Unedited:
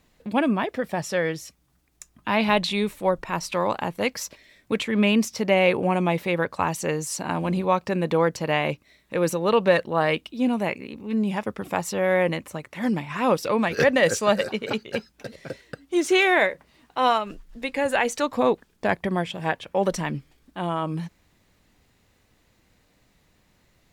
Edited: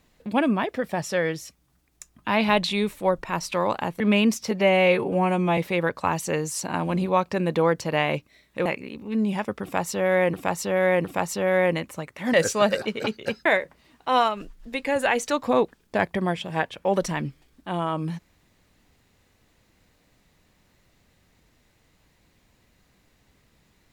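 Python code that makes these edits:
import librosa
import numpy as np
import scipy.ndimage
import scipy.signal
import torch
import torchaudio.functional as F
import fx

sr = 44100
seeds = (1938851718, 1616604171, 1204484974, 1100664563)

y = fx.edit(x, sr, fx.cut(start_s=4.0, length_s=0.91),
    fx.stretch_span(start_s=5.42, length_s=0.71, factor=1.5),
    fx.cut(start_s=9.21, length_s=1.43),
    fx.repeat(start_s=11.61, length_s=0.71, count=3),
    fx.cut(start_s=12.9, length_s=1.1),
    fx.cut(start_s=15.12, length_s=1.23), tone=tone)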